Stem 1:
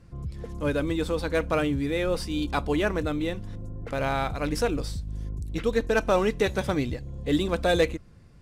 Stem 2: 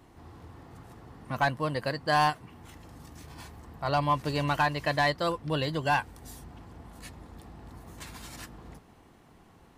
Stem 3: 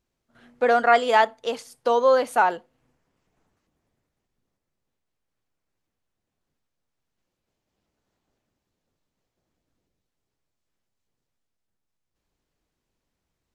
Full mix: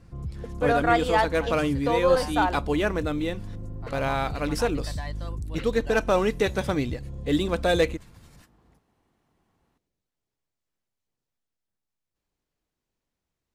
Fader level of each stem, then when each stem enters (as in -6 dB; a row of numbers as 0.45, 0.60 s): +0.5, -14.0, -4.5 dB; 0.00, 0.00, 0.00 s